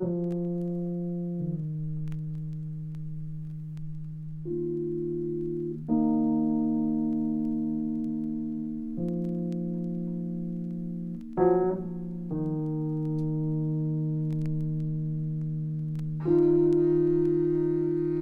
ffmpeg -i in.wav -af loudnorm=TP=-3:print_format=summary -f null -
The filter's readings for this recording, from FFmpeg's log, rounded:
Input Integrated:    -28.6 LUFS
Input True Peak:     -11.7 dBTP
Input LRA:             7.2 LU
Input Threshold:     -38.7 LUFS